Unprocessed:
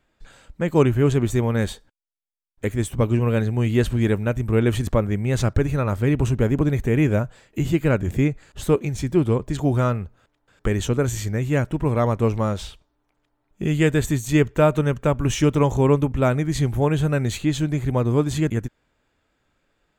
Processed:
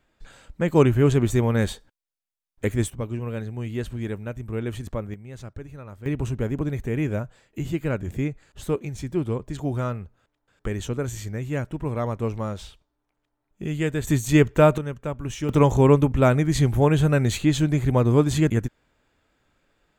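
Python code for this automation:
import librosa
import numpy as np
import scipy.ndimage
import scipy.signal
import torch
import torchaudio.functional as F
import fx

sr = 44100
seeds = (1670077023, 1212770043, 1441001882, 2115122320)

y = fx.gain(x, sr, db=fx.steps((0.0, 0.0), (2.9, -10.0), (5.14, -18.0), (6.06, -6.5), (14.07, 1.0), (14.78, -9.5), (15.49, 1.5)))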